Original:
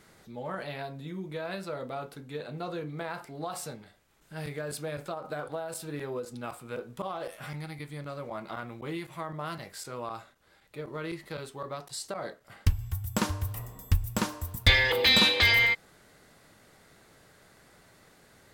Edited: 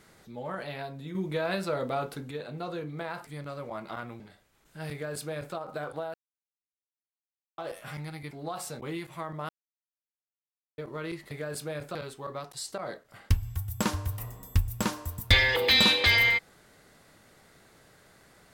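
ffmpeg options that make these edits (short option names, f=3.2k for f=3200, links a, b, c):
-filter_complex "[0:a]asplit=13[a][b][c][d][e][f][g][h][i][j][k][l][m];[a]atrim=end=1.152[n];[b]atrim=start=1.148:end=2.312,asetpts=PTS-STARTPTS,volume=6dB[o];[c]atrim=start=2.308:end=3.272[p];[d]atrim=start=7.868:end=8.802[q];[e]atrim=start=3.758:end=5.7,asetpts=PTS-STARTPTS,afade=t=out:st=1.938:d=0.004:c=hsin[r];[f]atrim=start=5.7:end=7.14,asetpts=PTS-STARTPTS,volume=0[s];[g]atrim=start=7.14:end=7.872,asetpts=PTS-STARTPTS,afade=t=in:d=0.004:c=hsin[t];[h]atrim=start=3.268:end=3.762[u];[i]atrim=start=8.798:end=9.49,asetpts=PTS-STARTPTS,afade=t=out:st=0.688:d=0.004:c=hsin[v];[j]atrim=start=9.49:end=10.78,asetpts=PTS-STARTPTS,volume=0[w];[k]atrim=start=10.78:end=11.312,asetpts=PTS-STARTPTS,afade=t=in:d=0.004:c=hsin[x];[l]atrim=start=4.478:end=5.122[y];[m]atrim=start=11.308[z];[n][o]acrossfade=d=0.004:c1=hsin:c2=hsin[aa];[aa][p]acrossfade=d=0.004:c1=hsin:c2=hsin[ab];[ab][q]acrossfade=d=0.004:c1=hsin:c2=hsin[ac];[r][s][t]concat=n=3:v=0:a=1[ad];[ac][ad]acrossfade=d=0.004:c1=hsin:c2=hsin[ae];[ae][u]acrossfade=d=0.004:c1=hsin:c2=hsin[af];[v][w][x]concat=n=3:v=0:a=1[ag];[af][ag]acrossfade=d=0.004:c1=hsin:c2=hsin[ah];[ah][y]acrossfade=d=0.004:c1=hsin:c2=hsin[ai];[ai][z]acrossfade=d=0.004:c1=hsin:c2=hsin"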